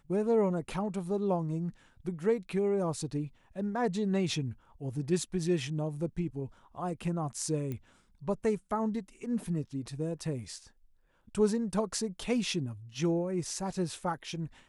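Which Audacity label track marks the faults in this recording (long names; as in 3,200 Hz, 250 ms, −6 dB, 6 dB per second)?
7.720000	7.720000	click −25 dBFS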